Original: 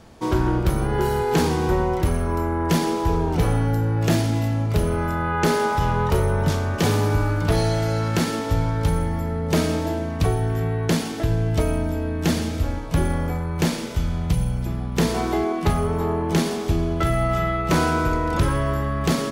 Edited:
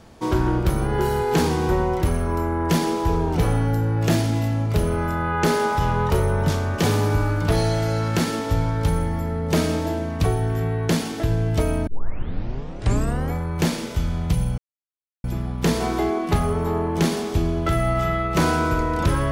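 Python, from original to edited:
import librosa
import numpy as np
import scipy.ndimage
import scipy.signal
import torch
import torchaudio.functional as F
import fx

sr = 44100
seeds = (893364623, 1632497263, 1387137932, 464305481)

y = fx.edit(x, sr, fx.tape_start(start_s=11.87, length_s=1.47),
    fx.insert_silence(at_s=14.58, length_s=0.66), tone=tone)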